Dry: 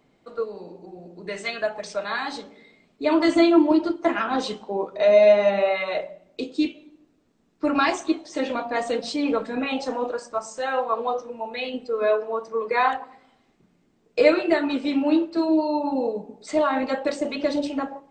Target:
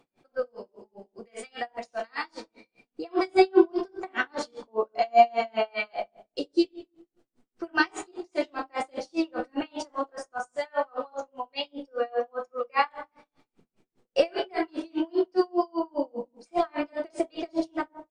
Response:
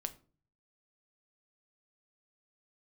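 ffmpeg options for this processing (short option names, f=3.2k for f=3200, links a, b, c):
-filter_complex "[1:a]atrim=start_sample=2205,asetrate=28665,aresample=44100[a];[0:a][a]afir=irnorm=-1:irlink=0,asetrate=49501,aresample=44100,atempo=0.890899,aeval=exprs='val(0)*pow(10,-36*(0.5-0.5*cos(2*PI*5*n/s))/20)':c=same"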